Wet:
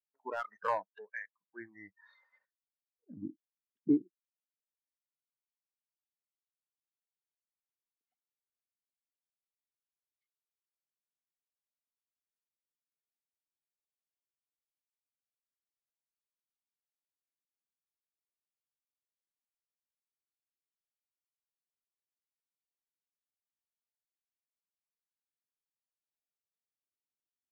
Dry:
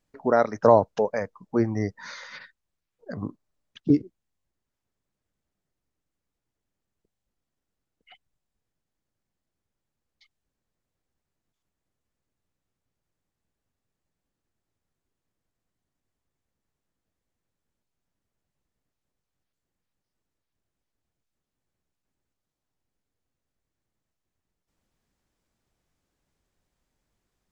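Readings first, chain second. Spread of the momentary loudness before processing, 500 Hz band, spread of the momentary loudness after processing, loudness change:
21 LU, -20.0 dB, 21 LU, -12.5 dB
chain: Chebyshev shaper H 3 -20 dB, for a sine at -2 dBFS; LFO band-pass sine 0.21 Hz 310–1700 Hz; in parallel at -5.5 dB: hard clipper -28 dBFS, distortion -6 dB; on the sum: spectral noise reduction 23 dB; trim -4 dB

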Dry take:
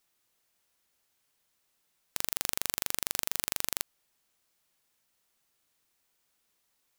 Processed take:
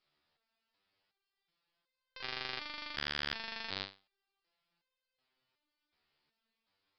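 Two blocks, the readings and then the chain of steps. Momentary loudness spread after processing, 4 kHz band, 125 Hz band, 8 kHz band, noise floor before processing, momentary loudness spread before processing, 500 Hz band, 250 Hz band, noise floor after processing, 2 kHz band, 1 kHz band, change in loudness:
8 LU, -1.5 dB, -1.5 dB, -31.5 dB, -76 dBFS, 5 LU, -3.0 dB, -2.0 dB, under -85 dBFS, +1.0 dB, -2.0 dB, -7.5 dB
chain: dynamic bell 2 kHz, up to +4 dB, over -56 dBFS, Q 1.2; resampled via 11.025 kHz; resonator arpeggio 2.7 Hz 74–520 Hz; trim +8.5 dB

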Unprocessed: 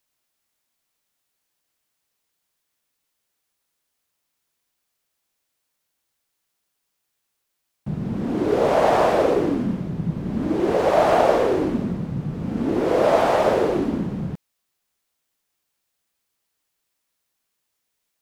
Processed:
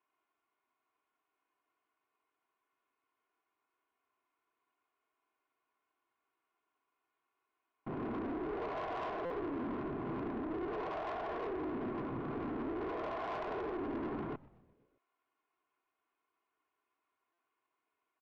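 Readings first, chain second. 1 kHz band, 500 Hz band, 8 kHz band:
-17.5 dB, -20.5 dB, no reading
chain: bass shelf 230 Hz -10.5 dB; comb 2.8 ms, depth 88%; reverse; compression, threshold -25 dBFS, peak gain reduction 13.5 dB; reverse; peak limiter -25.5 dBFS, peak gain reduction 9.5 dB; gain riding 0.5 s; cabinet simulation 150–2100 Hz, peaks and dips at 700 Hz -5 dB, 1 kHz +6 dB, 1.8 kHz -8 dB; valve stage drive 36 dB, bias 0.6; frequency-shifting echo 124 ms, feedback 64%, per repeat -140 Hz, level -22 dB; buffer glitch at 9.25/17.33 s, samples 256, times 8; trim +1 dB

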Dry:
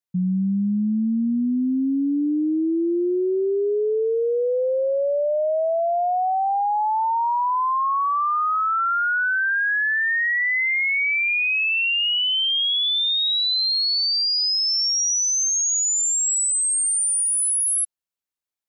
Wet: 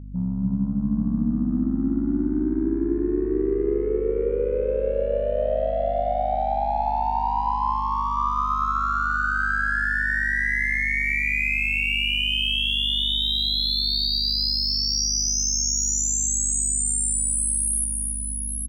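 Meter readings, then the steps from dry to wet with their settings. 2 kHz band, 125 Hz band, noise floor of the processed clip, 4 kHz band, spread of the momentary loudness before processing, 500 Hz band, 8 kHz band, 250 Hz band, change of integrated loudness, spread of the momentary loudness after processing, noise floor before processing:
-2.5 dB, no reading, -27 dBFS, -2.5 dB, 4 LU, -2.5 dB, -2.5 dB, -2.0 dB, -2.5 dB, 4 LU, under -85 dBFS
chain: bass shelf 87 Hz +7.5 dB; AM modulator 69 Hz, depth 55%; Chebyshev shaper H 5 -36 dB, 7 -31 dB, 8 -43 dB, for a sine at -15 dBFS; hum 50 Hz, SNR 11 dB; multi-tap echo 56/121/277/816 ms -16/-17/-5/-4.5 dB; trim -2 dB

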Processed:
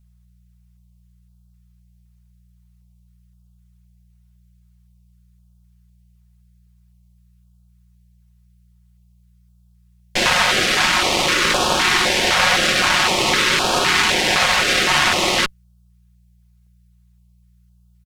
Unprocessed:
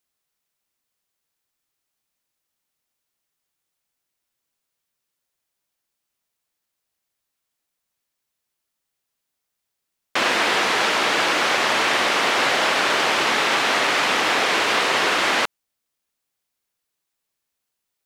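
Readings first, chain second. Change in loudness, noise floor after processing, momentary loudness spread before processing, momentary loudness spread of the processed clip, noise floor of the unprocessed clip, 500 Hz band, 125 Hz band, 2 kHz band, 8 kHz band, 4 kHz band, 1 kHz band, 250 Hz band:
+3.0 dB, -55 dBFS, 1 LU, 2 LU, -81 dBFS, +1.0 dB, +11.5 dB, +2.5 dB, +7.0 dB, +5.0 dB, +1.0 dB, +4.0 dB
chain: comb 5.5 ms, depth 65%; Chebyshev shaper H 4 -10 dB, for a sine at -4 dBFS; mains buzz 60 Hz, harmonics 3, -56 dBFS -6 dB/octave; step-sequenced notch 3.9 Hz 350–2000 Hz; trim +2 dB

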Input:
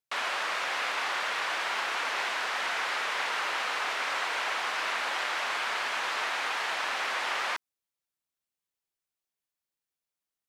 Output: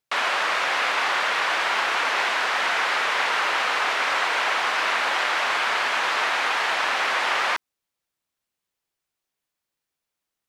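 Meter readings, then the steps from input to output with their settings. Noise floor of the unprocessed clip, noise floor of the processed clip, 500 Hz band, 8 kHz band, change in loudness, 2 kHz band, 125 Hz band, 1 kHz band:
under -85 dBFS, -85 dBFS, +8.5 dB, +5.5 dB, +8.0 dB, +8.0 dB, no reading, +8.5 dB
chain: treble shelf 5.4 kHz -5 dB; trim +8.5 dB

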